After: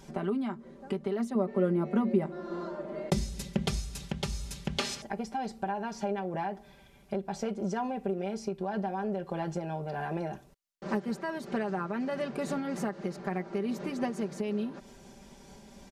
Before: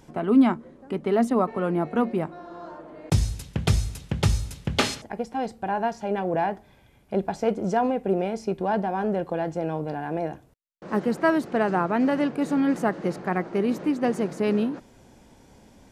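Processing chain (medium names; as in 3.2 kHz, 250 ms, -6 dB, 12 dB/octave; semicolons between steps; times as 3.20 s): peaking EQ 5.2 kHz +4 dB 1.4 oct; comb 5.1 ms, depth 79%; compression 6:1, threshold -28 dBFS, peak gain reduction 14.5 dB; 1.35–3.68 s: small resonant body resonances 210/370/550/2000 Hz, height 9 dB; random flutter of the level, depth 50%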